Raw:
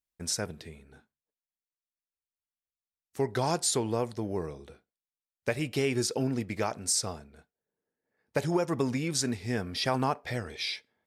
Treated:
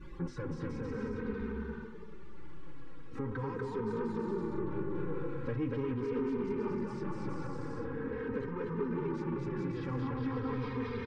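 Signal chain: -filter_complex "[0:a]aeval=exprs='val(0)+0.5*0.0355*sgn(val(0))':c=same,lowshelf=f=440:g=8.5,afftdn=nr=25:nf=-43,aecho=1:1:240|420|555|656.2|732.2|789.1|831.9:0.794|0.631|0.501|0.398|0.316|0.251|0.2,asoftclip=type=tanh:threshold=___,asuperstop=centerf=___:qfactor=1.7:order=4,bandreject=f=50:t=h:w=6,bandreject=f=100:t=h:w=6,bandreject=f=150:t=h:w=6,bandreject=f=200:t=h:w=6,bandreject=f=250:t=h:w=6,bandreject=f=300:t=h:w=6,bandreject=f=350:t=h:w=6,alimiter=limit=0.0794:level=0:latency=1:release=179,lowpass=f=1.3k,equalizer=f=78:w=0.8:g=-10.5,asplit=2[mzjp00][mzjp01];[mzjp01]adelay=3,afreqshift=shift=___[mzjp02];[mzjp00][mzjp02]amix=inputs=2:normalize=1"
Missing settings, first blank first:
0.106, 670, -0.42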